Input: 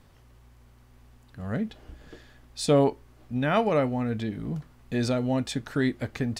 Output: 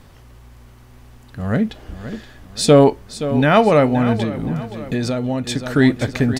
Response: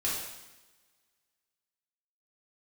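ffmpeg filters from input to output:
-filter_complex "[0:a]acontrast=82,asplit=2[link_01][link_02];[link_02]aecho=0:1:523|1046|1569|2092:0.237|0.0972|0.0399|0.0163[link_03];[link_01][link_03]amix=inputs=2:normalize=0,asettb=1/sr,asplit=3[link_04][link_05][link_06];[link_04]atrim=end=4.234[link_07];[link_05]atrim=start=4.23:end=5.66,asetpts=PTS-STARTPTS,afade=type=in:duration=0.004:curve=qsin,afade=type=out:start_time=1.426:duration=0.004:curve=qsin,acompressor=threshold=-22dB:ratio=6[link_08];[link_06]atrim=start=5.656[link_09];[link_07][link_08]acrossfade=duration=0.004:curve1=hsin:curve2=qsin[link_10];[link_10][link_09]acrossfade=duration=0.004:curve1=qsin:curve2=hsin,volume=4dB"

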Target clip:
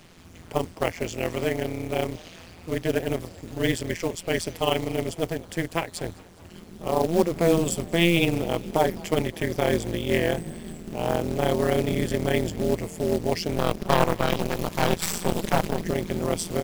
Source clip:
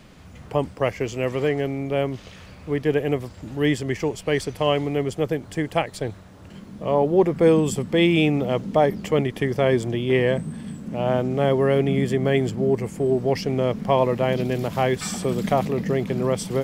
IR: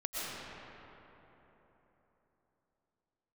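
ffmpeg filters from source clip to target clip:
-filter_complex "[0:a]highshelf=frequency=2900:gain=7,asettb=1/sr,asplit=3[link_01][link_02][link_03];[link_01]atrim=end=13.564[link_04];[link_02]atrim=start=13.56:end=15.82,asetpts=PTS-STARTPTS,afade=type=in:duration=0.004:curve=qsin,afade=type=out:start_time=2.256:duration=0.004:curve=qsin,aeval=exprs='0.501*(cos(1*acos(clip(val(0)/0.501,-1,1)))-cos(1*PI/2))+0.112*(cos(2*acos(clip(val(0)/0.501,-1,1)))-cos(2*PI/2))+0.141*(cos(4*acos(clip(val(0)/0.501,-1,1)))-cos(4*PI/2))+0.0158*(cos(7*acos(clip(val(0)/0.501,-1,1)))-cos(7*PI/2))+0.0562*(cos(8*acos(clip(val(0)/0.501,-1,1)))-cos(8*PI/2))':channel_layout=same[link_05];[link_03]atrim=start=15.816[link_06];[link_04][link_05]acrossfade=duration=0.004:curve1=hsin:curve2=qsin[link_07];[link_07][link_06]acrossfade=duration=0.004:curve1=qsin:curve2=hsin,tremolo=f=170:d=0.974,acrusher=bits=4:mode=log:mix=0:aa=0.000001,asplit=5[link_08][link_09][link_10][link_11][link_12];[link_09]adelay=207,afreqshift=52,volume=-24dB[link_13];[link_10]adelay=414,afreqshift=104,volume=-28.4dB[link_14];[link_11]adelay=621,afreqshift=156,volume=-32.9dB[link_15];[link_12]adelay=828,afreqshift=208,volume=-37.3dB[link_16];[link_08][link_13][link_14][link_15][link_16]amix=inputs=5:normalize=0"

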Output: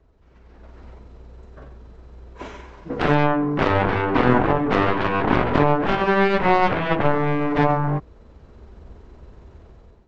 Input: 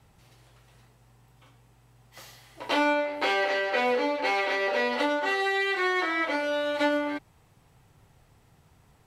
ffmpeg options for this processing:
ffmpeg -i in.wav -af "dynaudnorm=framelen=200:gausssize=5:maxgain=14dB,aeval=exprs='0.841*(cos(1*acos(clip(val(0)/0.841,-1,1)))-cos(1*PI/2))+0.0211*(cos(4*acos(clip(val(0)/0.841,-1,1)))-cos(4*PI/2))+0.00668*(cos(5*acos(clip(val(0)/0.841,-1,1)))-cos(5*PI/2))+0.335*(cos(7*acos(clip(val(0)/0.841,-1,1)))-cos(7*PI/2))+0.0376*(cos(8*acos(clip(val(0)/0.841,-1,1)))-cos(8*PI/2))':channel_layout=same,atempo=1.8,lowpass=frequency=1700:poles=1,asetrate=22050,aresample=44100,volume=-1.5dB" out.wav

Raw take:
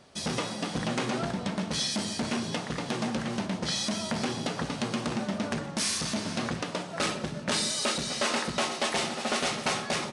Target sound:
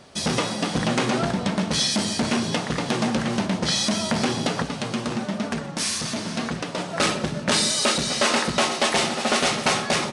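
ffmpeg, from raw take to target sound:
ffmpeg -i in.wav -filter_complex "[0:a]asettb=1/sr,asplit=3[link_01][link_02][link_03];[link_01]atrim=end=4.624[link_04];[link_02]atrim=start=4.62:end=6.78,asetpts=PTS-STARTPTS,afade=type=in:duration=0.004:curve=qsin,afade=type=out:start_time=2.156:duration=0.004:curve=qsin,flanger=delay=4.3:depth=4.4:regen=-46:speed=1.1:shape=sinusoidal[link_05];[link_03]atrim=start=6.776[link_06];[link_04][link_05]acrossfade=duration=0.004:curve1=hsin:curve2=qsin[link_07];[link_07][link_06]acrossfade=duration=0.004:curve1=qsin:curve2=hsin,volume=7.5dB" out.wav

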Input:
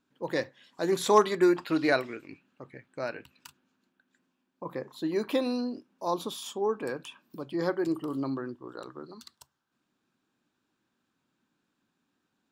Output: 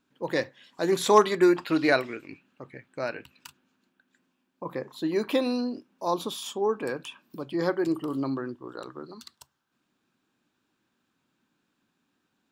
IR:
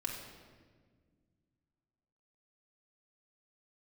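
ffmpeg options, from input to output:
-af "equalizer=frequency=2600:width=1.5:gain=2,volume=2.5dB"

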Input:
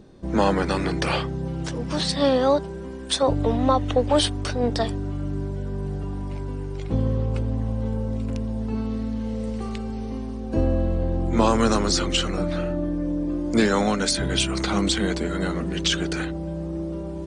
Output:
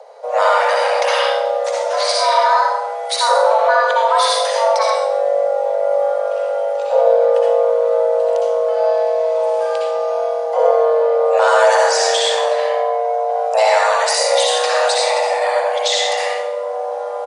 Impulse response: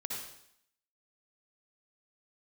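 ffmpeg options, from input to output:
-filter_complex "[1:a]atrim=start_sample=2205[link_01];[0:a][link_01]afir=irnorm=-1:irlink=0,asplit=2[link_02][link_03];[link_03]alimiter=limit=-15dB:level=0:latency=1:release=24,volume=1dB[link_04];[link_02][link_04]amix=inputs=2:normalize=0,equalizer=frequency=110:width=1.9:gain=8.5,asplit=2[link_05][link_06];[link_06]adelay=100,highpass=300,lowpass=3400,asoftclip=type=hard:threshold=-11dB,volume=-21dB[link_07];[link_05][link_07]amix=inputs=2:normalize=0,areverse,acompressor=mode=upward:threshold=-27dB:ratio=2.5,areverse,afreqshift=420"

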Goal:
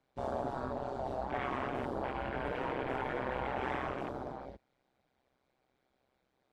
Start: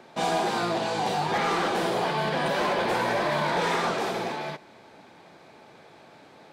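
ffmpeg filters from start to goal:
ffmpeg -i in.wav -af "afreqshift=-92,afwtdn=0.0282,tremolo=f=130:d=0.919,volume=-6.5dB" out.wav

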